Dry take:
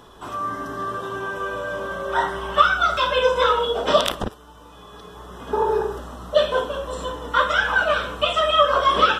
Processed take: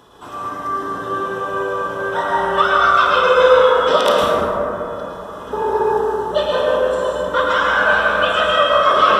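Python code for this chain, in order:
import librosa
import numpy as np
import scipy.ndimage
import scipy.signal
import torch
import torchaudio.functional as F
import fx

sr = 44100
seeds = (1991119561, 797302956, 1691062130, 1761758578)

y = fx.highpass(x, sr, hz=93.0, slope=6)
y = fx.rev_plate(y, sr, seeds[0], rt60_s=3.6, hf_ratio=0.25, predelay_ms=95, drr_db=-5.0)
y = F.gain(torch.from_numpy(y), -1.0).numpy()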